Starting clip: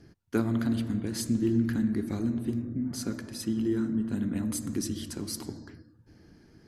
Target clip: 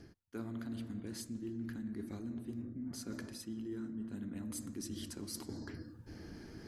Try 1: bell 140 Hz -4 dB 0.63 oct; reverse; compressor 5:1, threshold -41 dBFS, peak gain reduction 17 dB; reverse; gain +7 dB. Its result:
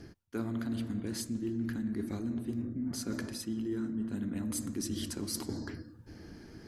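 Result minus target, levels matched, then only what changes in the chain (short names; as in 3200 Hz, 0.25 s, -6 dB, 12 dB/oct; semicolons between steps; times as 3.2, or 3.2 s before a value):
compressor: peak gain reduction -7 dB
change: compressor 5:1, threshold -50 dBFS, peak gain reduction 24.5 dB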